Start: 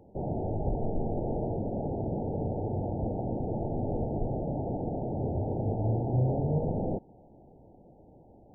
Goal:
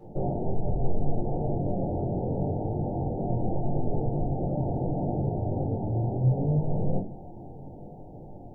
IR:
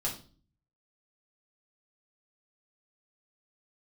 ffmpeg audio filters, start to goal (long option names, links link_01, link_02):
-filter_complex "[0:a]acompressor=threshold=-37dB:ratio=6,flanger=delay=19.5:depth=4.2:speed=0.75[link_01];[1:a]atrim=start_sample=2205[link_02];[link_01][link_02]afir=irnorm=-1:irlink=0,volume=8dB"